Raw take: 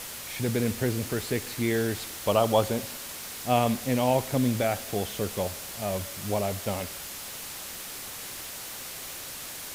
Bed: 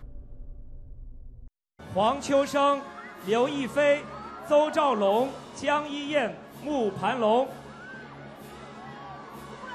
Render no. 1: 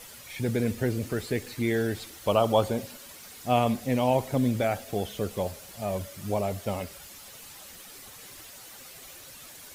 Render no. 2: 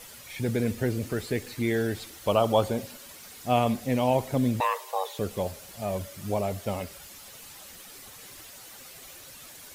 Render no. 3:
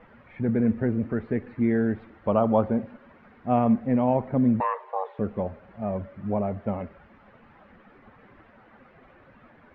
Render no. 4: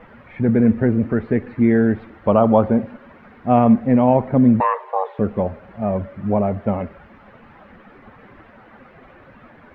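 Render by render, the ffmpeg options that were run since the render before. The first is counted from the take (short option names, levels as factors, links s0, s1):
-af "afftdn=nr=10:nf=-39"
-filter_complex "[0:a]asettb=1/sr,asplit=3[s0][s1][s2];[s0]atrim=end=4.604[s3];[s1]atrim=start=4.6:end=5.19,asetpts=PTS-STARTPTS,afade=t=in:d=0.004:c=qsin,afade=t=out:st=0.586:d=0.004:c=qsin,afreqshift=370[s4];[s2]atrim=start=5.186[s5];[s3][s4]acrossfade=d=0.004:c1=hsin:c2=qsin[s6];[s6][s5]acrossfade=d=0.004:c1=qsin:c2=hsin"
-af "lowpass=f=1800:w=0.5412,lowpass=f=1800:w=1.3066,equalizer=f=220:t=o:w=0.42:g=8.5"
-af "volume=2.51,alimiter=limit=0.794:level=0:latency=1"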